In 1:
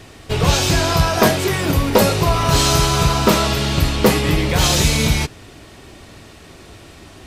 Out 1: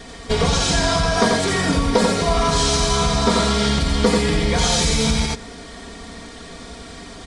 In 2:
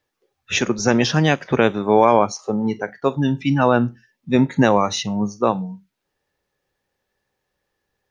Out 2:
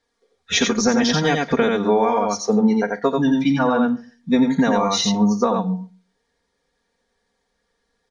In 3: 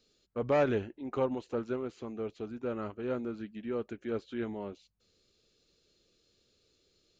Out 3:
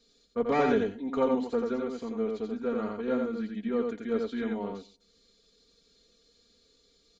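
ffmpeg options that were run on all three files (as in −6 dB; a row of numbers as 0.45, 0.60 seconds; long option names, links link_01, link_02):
-filter_complex "[0:a]aresample=22050,aresample=44100,equalizer=frequency=4100:width=1.5:gain=2.5,bandreject=frequency=2700:width=5.6,asplit=2[link_01][link_02];[link_02]aecho=0:1:87:0.668[link_03];[link_01][link_03]amix=inputs=2:normalize=0,acompressor=threshold=-17dB:ratio=6,aecho=1:1:4.3:0.84,asplit=2[link_04][link_05];[link_05]adelay=136,lowpass=frequency=1100:poles=1,volume=-23dB,asplit=2[link_06][link_07];[link_07]adelay=136,lowpass=frequency=1100:poles=1,volume=0.18[link_08];[link_06][link_08]amix=inputs=2:normalize=0[link_09];[link_04][link_09]amix=inputs=2:normalize=0,volume=1dB"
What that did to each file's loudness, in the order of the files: −2.0, 0.0, +4.5 LU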